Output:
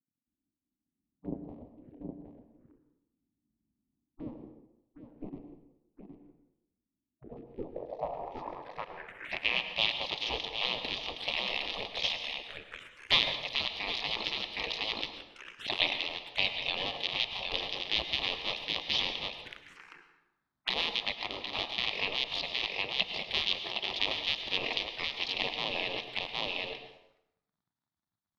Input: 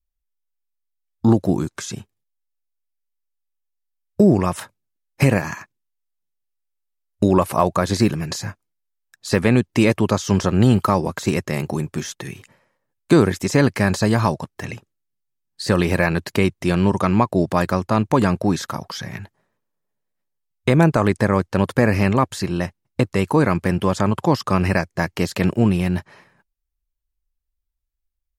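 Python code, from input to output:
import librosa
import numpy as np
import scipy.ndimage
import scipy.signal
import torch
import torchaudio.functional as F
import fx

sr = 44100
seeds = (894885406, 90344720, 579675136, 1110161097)

p1 = fx.cycle_switch(x, sr, every=2, mode='muted')
p2 = p1 + fx.echo_single(p1, sr, ms=766, db=-7.0, dry=0)
p3 = fx.rider(p2, sr, range_db=5, speed_s=0.5)
p4 = fx.spec_gate(p3, sr, threshold_db=-15, keep='weak')
p5 = fx.env_phaser(p4, sr, low_hz=470.0, high_hz=1500.0, full_db=-32.5)
p6 = fx.filter_sweep_lowpass(p5, sr, from_hz=280.0, to_hz=3500.0, start_s=7.08, end_s=9.79, q=2.9)
p7 = fx.rev_plate(p6, sr, seeds[0], rt60_s=0.84, hf_ratio=0.7, predelay_ms=90, drr_db=8.0)
y = p7 * 10.0 ** (-2.5 / 20.0)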